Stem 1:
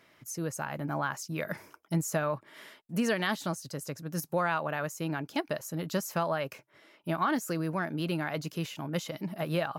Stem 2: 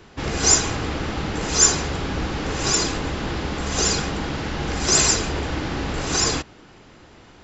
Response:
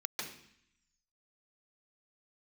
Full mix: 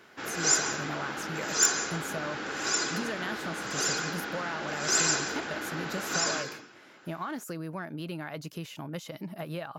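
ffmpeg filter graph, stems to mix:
-filter_complex "[0:a]acompressor=threshold=-37dB:ratio=2.5,volume=0.5dB[link_01];[1:a]highpass=250,equalizer=frequency=1500:width_type=o:width=0.41:gain=9.5,volume=-12dB,asplit=2[link_02][link_03];[link_03]volume=-5.5dB[link_04];[2:a]atrim=start_sample=2205[link_05];[link_04][link_05]afir=irnorm=-1:irlink=0[link_06];[link_01][link_02][link_06]amix=inputs=3:normalize=0,aeval=exprs='(mod(3.35*val(0)+1,2)-1)/3.35':channel_layout=same"

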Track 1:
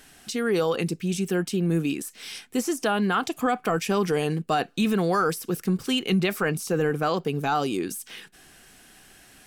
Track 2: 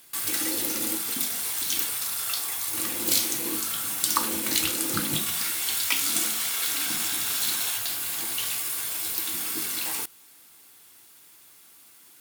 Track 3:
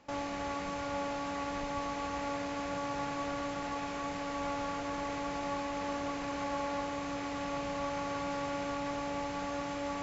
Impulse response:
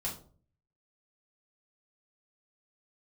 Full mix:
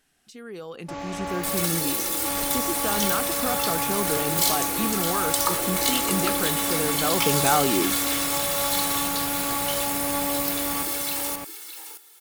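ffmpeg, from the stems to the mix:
-filter_complex "[0:a]volume=-8.5dB,afade=type=in:start_time=6.96:duration=0.36:silence=0.398107[link_01];[1:a]highpass=280,bandreject=frequency=2600:width=26,aecho=1:1:2.3:0.97,adelay=1300,volume=-13.5dB,asplit=2[link_02][link_03];[link_03]volume=-11dB[link_04];[2:a]adelay=800,volume=-5dB,asplit=3[link_05][link_06][link_07];[link_05]atrim=end=1.66,asetpts=PTS-STARTPTS,afade=type=out:start_time=1.656:duration=0.004:curve=hsin[link_08];[link_06]atrim=start=1.66:end=2.25,asetpts=PTS-STARTPTS,volume=0[link_09];[link_07]atrim=start=2.25,asetpts=PTS-STARTPTS,afade=type=in:duration=0.004:curve=hsin[link_10];[link_08][link_09][link_10]concat=n=3:v=0:a=1,asplit=2[link_11][link_12];[link_12]volume=-5.5dB[link_13];[link_04][link_13]amix=inputs=2:normalize=0,aecho=0:1:616:1[link_14];[link_01][link_02][link_11][link_14]amix=inputs=4:normalize=0,dynaudnorm=framelen=670:gausssize=3:maxgain=11.5dB"

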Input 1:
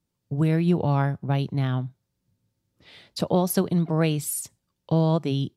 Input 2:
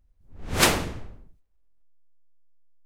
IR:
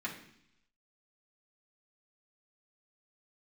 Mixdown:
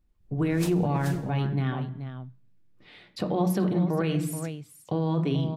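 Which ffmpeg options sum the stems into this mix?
-filter_complex "[0:a]bass=frequency=250:gain=0,treble=frequency=4000:gain=-11,volume=-2.5dB,asplit=4[link_01][link_02][link_03][link_04];[link_02]volume=-4.5dB[link_05];[link_03]volume=-10.5dB[link_06];[1:a]equalizer=frequency=1700:width=0.7:gain=-11,volume=-5dB,asplit=2[link_07][link_08];[link_08]volume=-14dB[link_09];[link_04]apad=whole_len=125818[link_10];[link_07][link_10]sidechaincompress=threshold=-30dB:ratio=8:attack=16:release=472[link_11];[2:a]atrim=start_sample=2205[link_12];[link_05][link_12]afir=irnorm=-1:irlink=0[link_13];[link_06][link_09]amix=inputs=2:normalize=0,aecho=0:1:429:1[link_14];[link_01][link_11][link_13][link_14]amix=inputs=4:normalize=0,alimiter=limit=-17dB:level=0:latency=1:release=19"

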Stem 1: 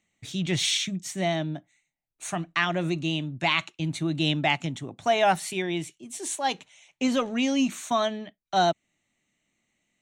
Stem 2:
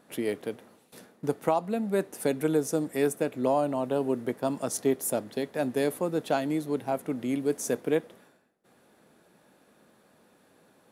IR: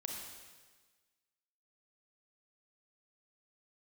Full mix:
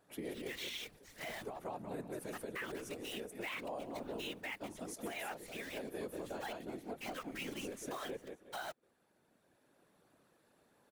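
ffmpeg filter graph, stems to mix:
-filter_complex "[0:a]bandpass=frequency=1800:width_type=q:width=1.5:csg=0,acrusher=bits=7:dc=4:mix=0:aa=0.000001,volume=-1.5dB,asplit=2[link_01][link_02];[1:a]highpass=150,volume=-4.5dB,asplit=2[link_03][link_04];[link_04]volume=-4.5dB[link_05];[link_02]apad=whole_len=481265[link_06];[link_03][link_06]sidechaincompress=threshold=-43dB:ratio=4:attack=8.8:release=1110[link_07];[link_05]aecho=0:1:181|362|543|724|905:1|0.34|0.116|0.0393|0.0134[link_08];[link_01][link_07][link_08]amix=inputs=3:normalize=0,afftfilt=real='hypot(re,im)*cos(2*PI*random(0))':imag='hypot(re,im)*sin(2*PI*random(1))':win_size=512:overlap=0.75,alimiter=level_in=9dB:limit=-24dB:level=0:latency=1:release=179,volume=-9dB"

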